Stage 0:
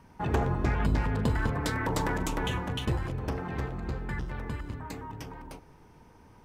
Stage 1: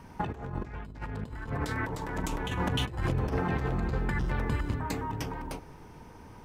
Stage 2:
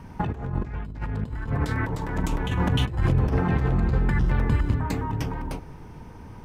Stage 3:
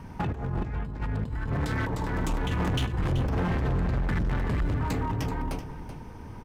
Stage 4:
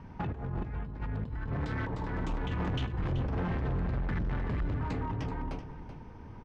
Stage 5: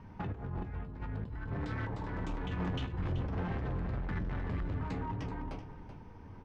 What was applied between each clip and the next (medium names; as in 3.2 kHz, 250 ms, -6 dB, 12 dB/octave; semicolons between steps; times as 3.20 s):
compressor with a negative ratio -33 dBFS, ratio -0.5; trim +2.5 dB
tone controls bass +6 dB, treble -3 dB; trim +3 dB
hard clipper -24 dBFS, distortion -8 dB; on a send: delay 381 ms -11.5 dB
distance through air 140 m; trim -5 dB
flange 0.53 Hz, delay 9.6 ms, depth 1.8 ms, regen +65%; trim +1 dB